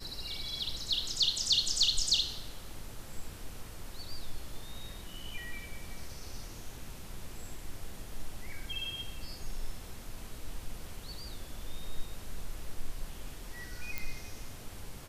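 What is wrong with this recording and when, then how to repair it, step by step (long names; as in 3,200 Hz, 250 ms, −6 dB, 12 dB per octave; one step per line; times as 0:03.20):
0:13.98: click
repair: click removal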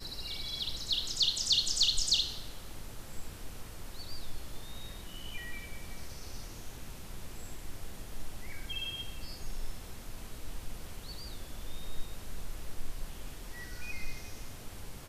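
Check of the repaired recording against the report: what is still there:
none of them is left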